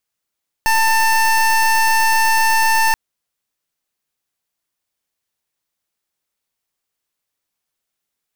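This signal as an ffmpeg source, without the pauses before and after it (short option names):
-f lavfi -i "aevalsrc='0.2*(2*lt(mod(892*t,1),0.24)-1)':d=2.28:s=44100"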